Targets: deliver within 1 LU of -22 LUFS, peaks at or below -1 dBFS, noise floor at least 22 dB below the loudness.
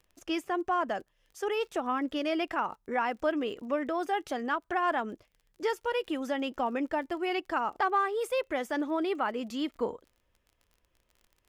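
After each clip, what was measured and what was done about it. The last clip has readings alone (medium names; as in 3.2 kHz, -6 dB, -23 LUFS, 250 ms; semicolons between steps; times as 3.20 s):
tick rate 30 per s; loudness -31.5 LUFS; peak level -16.5 dBFS; loudness target -22.0 LUFS
-> de-click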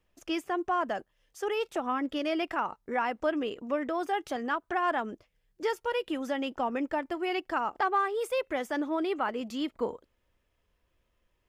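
tick rate 0 per s; loudness -31.5 LUFS; peak level -16.5 dBFS; loudness target -22.0 LUFS
-> trim +9.5 dB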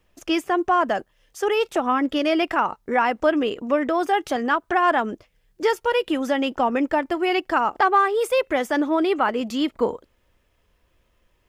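loudness -22.0 LUFS; peak level -7.0 dBFS; noise floor -66 dBFS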